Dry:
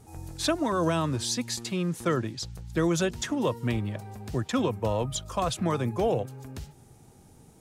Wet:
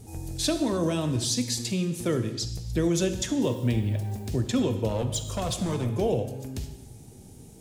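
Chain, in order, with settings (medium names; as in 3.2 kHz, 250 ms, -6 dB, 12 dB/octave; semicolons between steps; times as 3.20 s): peaking EQ 1.2 kHz -12 dB 1.5 oct; in parallel at +1.5 dB: compression, threshold -38 dBFS, peak gain reduction 14.5 dB; 3.43–4.32 s: on the sum: added noise violet -63 dBFS; 4.89–5.99 s: hard clipper -24 dBFS, distortion -20 dB; gated-style reverb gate 330 ms falling, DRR 7 dB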